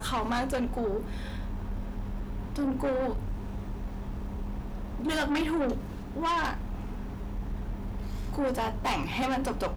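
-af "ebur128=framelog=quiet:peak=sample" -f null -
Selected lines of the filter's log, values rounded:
Integrated loudness:
  I:         -32.6 LUFS
  Threshold: -42.6 LUFS
Loudness range:
  LRA:         2.6 LU
  Threshold: -53.0 LUFS
  LRA low:   -34.6 LUFS
  LRA high:  -32.0 LUFS
Sample peak:
  Peak:      -22.4 dBFS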